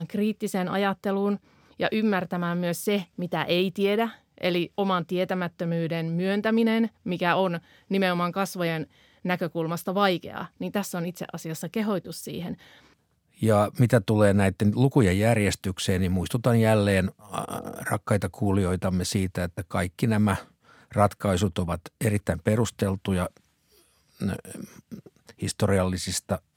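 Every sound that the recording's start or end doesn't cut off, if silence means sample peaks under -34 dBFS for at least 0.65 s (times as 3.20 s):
13.42–23.27 s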